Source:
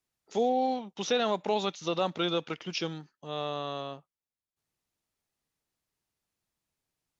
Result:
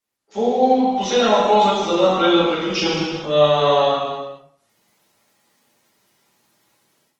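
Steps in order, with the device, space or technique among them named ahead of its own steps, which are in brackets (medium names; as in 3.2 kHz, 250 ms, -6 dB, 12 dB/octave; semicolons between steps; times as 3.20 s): 1.87–2.64 s: treble shelf 4.4 kHz -3.5 dB; gated-style reverb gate 440 ms falling, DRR -0.5 dB; far-field microphone of a smart speaker (reverberation RT60 0.50 s, pre-delay 5 ms, DRR -8 dB; high-pass 140 Hz 24 dB/octave; level rider gain up to 16 dB; trim -2.5 dB; Opus 20 kbps 48 kHz)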